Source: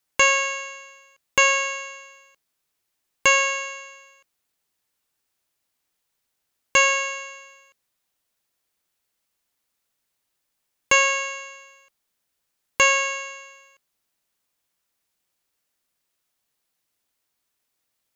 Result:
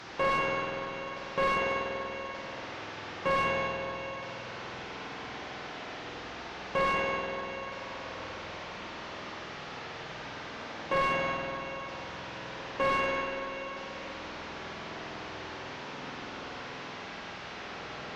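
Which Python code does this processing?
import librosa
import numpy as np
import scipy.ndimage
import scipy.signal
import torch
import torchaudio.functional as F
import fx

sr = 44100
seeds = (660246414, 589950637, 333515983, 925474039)

y = fx.delta_mod(x, sr, bps=32000, step_db=-30.5)
y = fx.highpass(y, sr, hz=110.0, slope=6)
y = fx.rev_spring(y, sr, rt60_s=3.8, pass_ms=(48,), chirp_ms=50, drr_db=-3.0)
y = 10.0 ** (-16.5 / 20.0) * (np.abs((y / 10.0 ** (-16.5 / 20.0) + 3.0) % 4.0 - 2.0) - 1.0)
y = fx.lowpass(y, sr, hz=1100.0, slope=6)
y = y * 10.0 ** (-1.5 / 20.0)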